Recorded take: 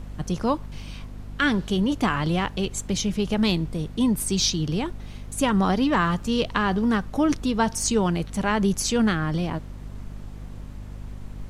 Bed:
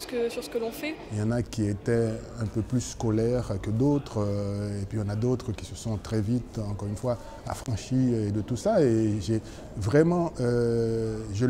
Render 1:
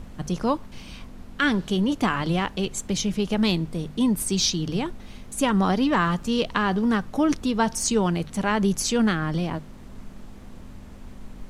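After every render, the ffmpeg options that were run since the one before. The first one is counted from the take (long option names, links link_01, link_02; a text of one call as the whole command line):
ffmpeg -i in.wav -af "bandreject=frequency=50:width_type=h:width=6,bandreject=frequency=100:width_type=h:width=6,bandreject=frequency=150:width_type=h:width=6" out.wav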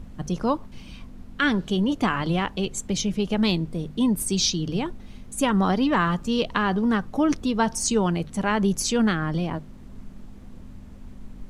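ffmpeg -i in.wav -af "afftdn=noise_reduction=6:noise_floor=-42" out.wav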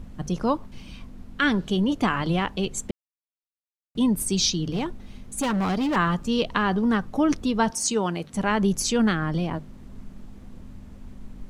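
ffmpeg -i in.wav -filter_complex "[0:a]asettb=1/sr,asplit=3[link_01][link_02][link_03];[link_01]atrim=end=4.724[link_04];[link_02]atrim=start=4.72:end=5.96,asetpts=PTS-STARTPTS,afade=type=in:duration=0.004:curve=qsin,afade=type=out:start_time=1.236:duration=0.004:curve=qsin,volume=21.5dB,asoftclip=hard,volume=-21.5dB[link_05];[link_03]atrim=start=5.956[link_06];[link_04][link_05]acrossfade=duration=0.004:curve1=hsin:curve2=qsin[link_07];[link_07][link_06]acrossfade=duration=0.004:curve1=qsin:curve2=hsin,asettb=1/sr,asplit=3[link_08][link_09][link_10];[link_08]atrim=end=7.704[link_11];[link_09]atrim=start=7.7:end=8.34,asetpts=PTS-STARTPTS,afade=type=in:duration=0.004:curve=qsin,afade=type=out:start_time=0.636:duration=0.004:curve=qsin,highpass=frequency=290:poles=1[link_12];[link_10]atrim=start=8.336[link_13];[link_11][link_12]acrossfade=duration=0.004:curve1=hsin:curve2=qsin[link_14];[link_14][link_13]acrossfade=duration=0.004:curve1=qsin:curve2=hsin,asplit=3[link_15][link_16][link_17];[link_15]atrim=end=2.91,asetpts=PTS-STARTPTS,afade=type=out:start_time=2.906:duration=0.004:curve=hsin[link_18];[link_16]atrim=start=2.91:end=3.95,asetpts=PTS-STARTPTS,volume=0[link_19];[link_17]atrim=start=3.95,asetpts=PTS-STARTPTS,afade=type=in:duration=0.004:curve=hsin[link_20];[link_18][link_19][link_20]concat=n=3:v=0:a=1" out.wav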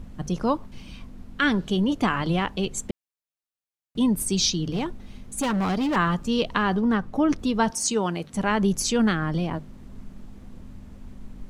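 ffmpeg -i in.wav -filter_complex "[0:a]asettb=1/sr,asplit=3[link_01][link_02][link_03];[link_01]atrim=end=6.804[link_04];[link_02]atrim=start=6.8:end=7.39,asetpts=PTS-STARTPTS,afade=type=in:duration=0.004:curve=qsin,afade=type=out:start_time=0.586:duration=0.004:curve=qsin,highshelf=frequency=3600:gain=-7[link_05];[link_03]atrim=start=7.386[link_06];[link_04][link_05]acrossfade=duration=0.004:curve1=hsin:curve2=qsin[link_07];[link_07][link_06]acrossfade=duration=0.004:curve1=qsin:curve2=hsin" out.wav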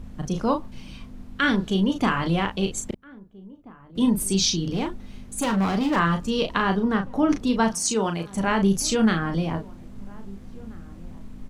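ffmpeg -i in.wav -filter_complex "[0:a]asplit=2[link_01][link_02];[link_02]adelay=36,volume=-6dB[link_03];[link_01][link_03]amix=inputs=2:normalize=0,asplit=2[link_04][link_05];[link_05]adelay=1633,volume=-22dB,highshelf=frequency=4000:gain=-36.7[link_06];[link_04][link_06]amix=inputs=2:normalize=0" out.wav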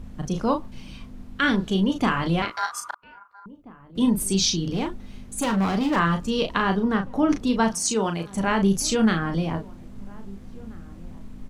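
ffmpeg -i in.wav -filter_complex "[0:a]asettb=1/sr,asplit=3[link_01][link_02][link_03];[link_01]atrim=end=2.424[link_04];[link_02]atrim=start=2.42:end=3.46,asetpts=PTS-STARTPTS,afade=type=in:duration=0.004:curve=qsin,afade=type=out:start_time=1.036:duration=0.004:curve=qsin,aeval=exprs='val(0)*sin(2*PI*1200*n/s)':channel_layout=same[link_05];[link_03]atrim=start=3.456[link_06];[link_04][link_05]acrossfade=duration=0.004:curve1=hsin:curve2=qsin[link_07];[link_07][link_06]acrossfade=duration=0.004:curve1=qsin:curve2=hsin" out.wav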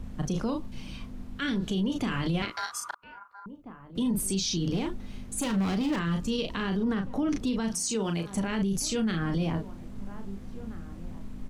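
ffmpeg -i in.wav -filter_complex "[0:a]acrossover=split=460|1900[link_01][link_02][link_03];[link_02]acompressor=threshold=-36dB:ratio=6[link_04];[link_01][link_04][link_03]amix=inputs=3:normalize=0,alimiter=limit=-21dB:level=0:latency=1:release=46" out.wav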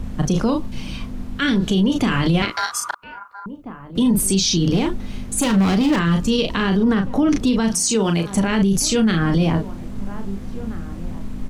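ffmpeg -i in.wav -af "volume=11dB" out.wav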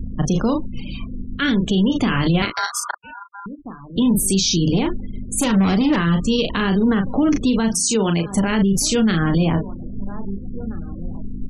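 ffmpeg -i in.wav -af "afftfilt=real='re*gte(hypot(re,im),0.0251)':imag='im*gte(hypot(re,im),0.0251)':win_size=1024:overlap=0.75" out.wav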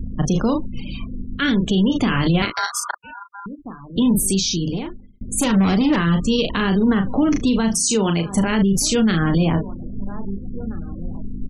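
ffmpeg -i in.wav -filter_complex "[0:a]asplit=3[link_01][link_02][link_03];[link_01]afade=type=out:start_time=6.85:duration=0.02[link_04];[link_02]asplit=2[link_05][link_06];[link_06]adelay=37,volume=-13.5dB[link_07];[link_05][link_07]amix=inputs=2:normalize=0,afade=type=in:start_time=6.85:duration=0.02,afade=type=out:start_time=8.48:duration=0.02[link_08];[link_03]afade=type=in:start_time=8.48:duration=0.02[link_09];[link_04][link_08][link_09]amix=inputs=3:normalize=0,asplit=2[link_10][link_11];[link_10]atrim=end=5.21,asetpts=PTS-STARTPTS,afade=type=out:start_time=4.21:duration=1[link_12];[link_11]atrim=start=5.21,asetpts=PTS-STARTPTS,afade=type=in:duration=0.004:curve=hsin[link_13];[link_12][link_13]concat=n=2:v=0:a=1" out.wav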